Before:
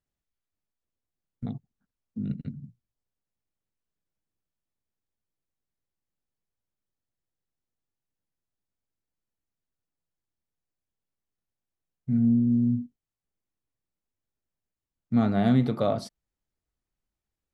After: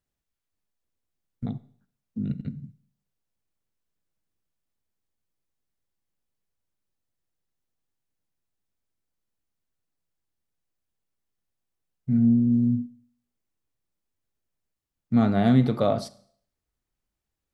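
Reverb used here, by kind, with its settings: Schroeder reverb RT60 0.58 s, combs from 31 ms, DRR 17 dB; trim +2.5 dB

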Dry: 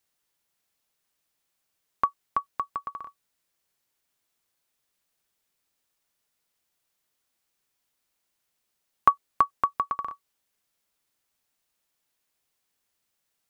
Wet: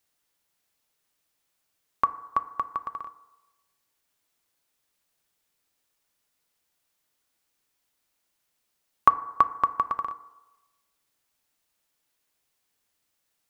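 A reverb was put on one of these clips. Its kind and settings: FDN reverb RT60 1.1 s, low-frequency decay 0.7×, high-frequency decay 0.3×, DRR 12 dB; trim +1.5 dB

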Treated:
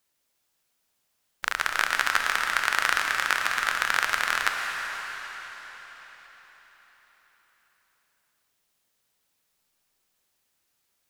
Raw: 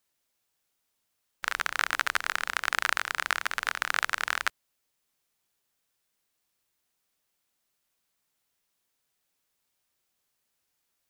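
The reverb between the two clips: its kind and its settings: algorithmic reverb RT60 4.9 s, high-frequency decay 0.95×, pre-delay 75 ms, DRR 2.5 dB; trim +2.5 dB

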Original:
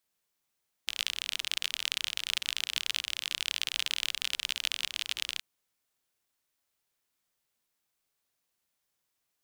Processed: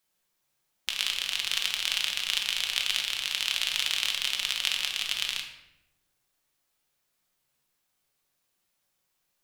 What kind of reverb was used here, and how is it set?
simulated room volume 330 m³, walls mixed, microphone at 0.97 m; trim +2.5 dB

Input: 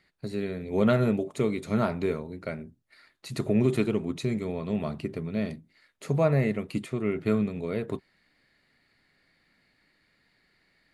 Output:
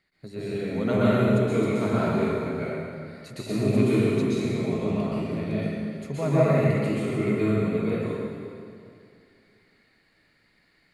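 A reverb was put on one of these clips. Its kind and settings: plate-style reverb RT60 2.4 s, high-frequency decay 0.8×, pre-delay 110 ms, DRR -10 dB; trim -6.5 dB

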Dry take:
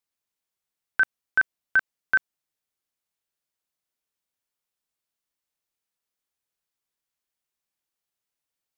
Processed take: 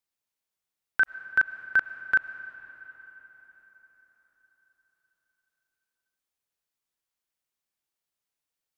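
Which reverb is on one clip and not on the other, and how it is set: algorithmic reverb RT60 4.8 s, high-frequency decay 0.7×, pre-delay 65 ms, DRR 12 dB; trim -1.5 dB

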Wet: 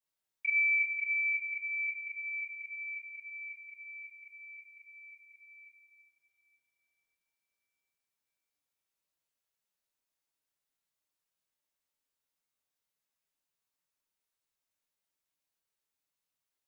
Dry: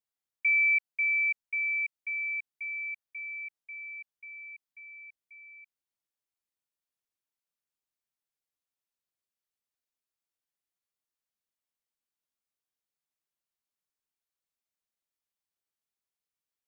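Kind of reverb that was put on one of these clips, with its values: two-slope reverb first 0.49 s, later 3.9 s, from -20 dB, DRR -7 dB; trim -4.5 dB

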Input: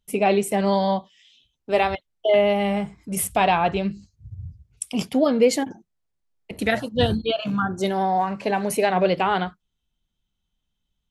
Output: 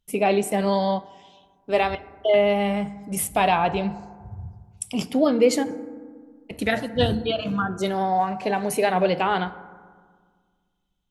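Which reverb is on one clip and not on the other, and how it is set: FDN reverb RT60 1.7 s, low-frequency decay 1.35×, high-frequency decay 0.35×, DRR 13 dB; trim -1 dB

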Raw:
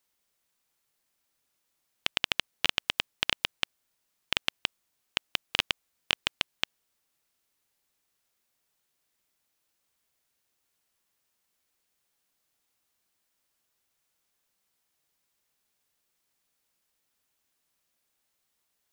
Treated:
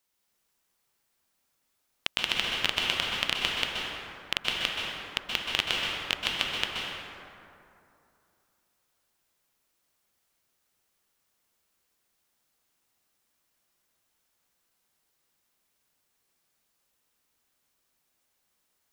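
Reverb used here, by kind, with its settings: plate-style reverb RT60 2.7 s, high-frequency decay 0.45×, pre-delay 115 ms, DRR -2.5 dB; trim -1 dB

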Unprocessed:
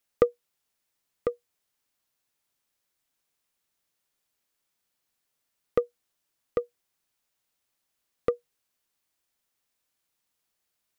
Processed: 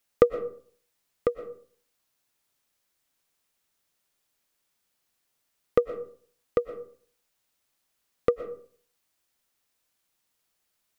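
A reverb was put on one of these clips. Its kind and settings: algorithmic reverb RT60 0.51 s, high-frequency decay 0.5×, pre-delay 80 ms, DRR 10.5 dB; trim +3 dB

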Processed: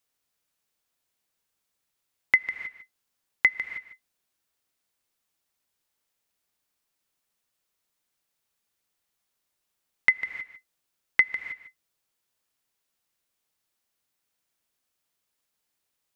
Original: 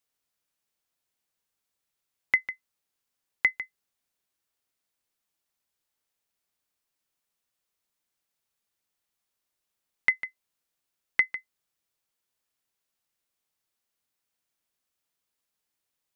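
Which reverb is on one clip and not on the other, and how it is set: gated-style reverb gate 340 ms rising, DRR 12 dB; trim +3 dB

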